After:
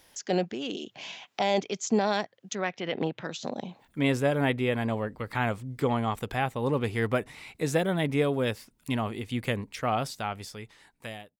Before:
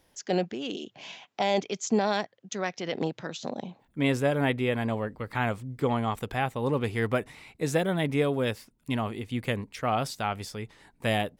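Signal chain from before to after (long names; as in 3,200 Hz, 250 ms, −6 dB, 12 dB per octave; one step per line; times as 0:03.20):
fade-out on the ending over 1.57 s
0:02.55–0:03.25: high shelf with overshoot 4,000 Hz −8.5 dB, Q 1.5
one half of a high-frequency compander encoder only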